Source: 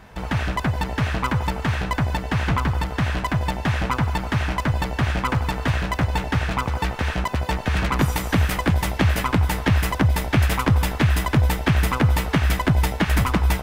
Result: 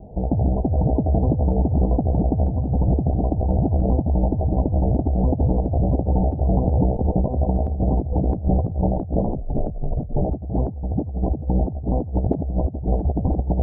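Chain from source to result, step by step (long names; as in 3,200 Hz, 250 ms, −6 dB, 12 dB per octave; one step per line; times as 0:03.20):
delay that plays each chunk backwards 387 ms, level −5 dB
Butterworth low-pass 760 Hz 72 dB per octave
0:09.25–0:10.22: frequency shifter −42 Hz
compressor whose output falls as the input rises −23 dBFS, ratio −0.5
level +4 dB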